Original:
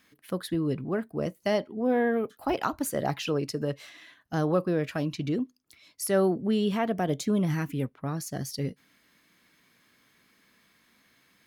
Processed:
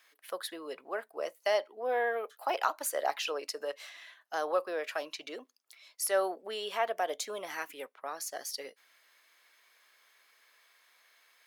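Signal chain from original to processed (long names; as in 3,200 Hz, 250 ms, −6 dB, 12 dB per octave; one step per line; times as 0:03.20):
high-pass filter 540 Hz 24 dB per octave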